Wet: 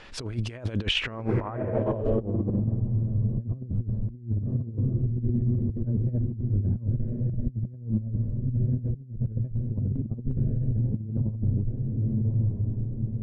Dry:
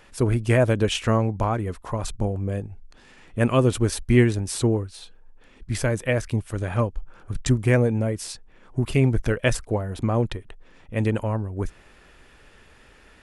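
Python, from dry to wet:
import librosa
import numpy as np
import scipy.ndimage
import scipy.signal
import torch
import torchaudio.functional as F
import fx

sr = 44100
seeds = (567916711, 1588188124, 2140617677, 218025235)

y = fx.echo_diffused(x, sr, ms=1152, feedback_pct=51, wet_db=-5.5)
y = fx.filter_sweep_lowpass(y, sr, from_hz=4500.0, to_hz=160.0, start_s=0.74, end_s=2.8, q=1.4)
y = fx.over_compress(y, sr, threshold_db=-26.0, ratio=-0.5)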